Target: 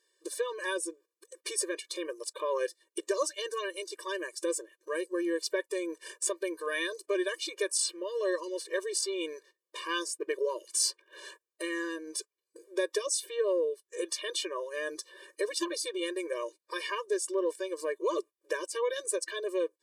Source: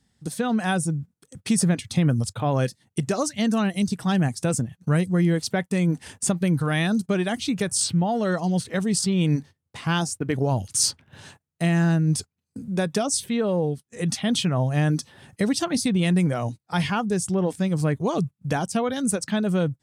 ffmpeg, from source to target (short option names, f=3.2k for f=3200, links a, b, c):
-filter_complex "[0:a]asplit=2[a][b];[b]acompressor=threshold=-32dB:ratio=12,volume=2dB[c];[a][c]amix=inputs=2:normalize=0,afftfilt=real='re*eq(mod(floor(b*sr/1024/310),2),1)':imag='im*eq(mod(floor(b*sr/1024/310),2),1)':win_size=1024:overlap=0.75,volume=-5dB"